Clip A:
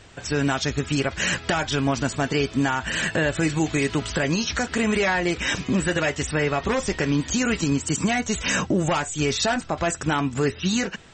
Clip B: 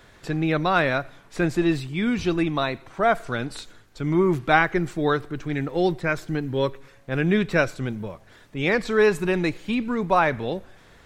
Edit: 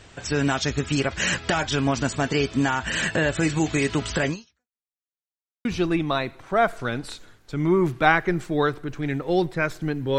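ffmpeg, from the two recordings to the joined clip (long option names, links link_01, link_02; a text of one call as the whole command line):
ffmpeg -i cue0.wav -i cue1.wav -filter_complex "[0:a]apad=whole_dur=10.18,atrim=end=10.18,asplit=2[link_01][link_02];[link_01]atrim=end=4.84,asetpts=PTS-STARTPTS,afade=type=out:start_time=4.29:duration=0.55:curve=exp[link_03];[link_02]atrim=start=4.84:end=5.65,asetpts=PTS-STARTPTS,volume=0[link_04];[1:a]atrim=start=2.12:end=6.65,asetpts=PTS-STARTPTS,afade=type=in:duration=0.004:curve=hsin[link_05];[link_03][link_04][link_05]concat=n=3:v=0:a=1" out.wav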